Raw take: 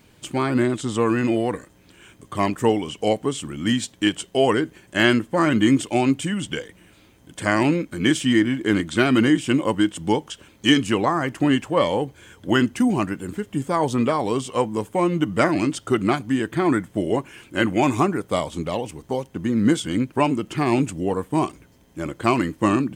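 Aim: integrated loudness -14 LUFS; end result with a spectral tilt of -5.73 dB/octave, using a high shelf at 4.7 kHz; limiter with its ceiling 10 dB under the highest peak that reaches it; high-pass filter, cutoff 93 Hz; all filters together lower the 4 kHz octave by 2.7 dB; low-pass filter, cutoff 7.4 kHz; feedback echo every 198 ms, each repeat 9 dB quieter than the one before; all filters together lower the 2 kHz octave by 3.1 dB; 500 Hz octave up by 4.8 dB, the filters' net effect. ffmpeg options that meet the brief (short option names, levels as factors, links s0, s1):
-af "highpass=93,lowpass=7400,equalizer=f=500:t=o:g=6.5,equalizer=f=2000:t=o:g=-4.5,equalizer=f=4000:t=o:g=-4,highshelf=f=4700:g=5.5,alimiter=limit=0.251:level=0:latency=1,aecho=1:1:198|396|594|792:0.355|0.124|0.0435|0.0152,volume=2.82"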